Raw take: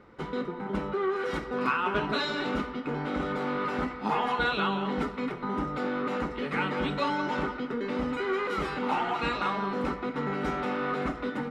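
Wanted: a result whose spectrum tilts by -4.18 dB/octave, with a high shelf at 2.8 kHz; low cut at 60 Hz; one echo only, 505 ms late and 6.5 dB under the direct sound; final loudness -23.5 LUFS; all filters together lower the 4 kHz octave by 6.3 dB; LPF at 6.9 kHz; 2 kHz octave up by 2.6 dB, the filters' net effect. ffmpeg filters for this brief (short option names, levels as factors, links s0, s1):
-af "highpass=60,lowpass=6900,equalizer=f=2000:t=o:g=7,highshelf=f=2800:g=-3.5,equalizer=f=4000:t=o:g=-8.5,aecho=1:1:505:0.473,volume=1.88"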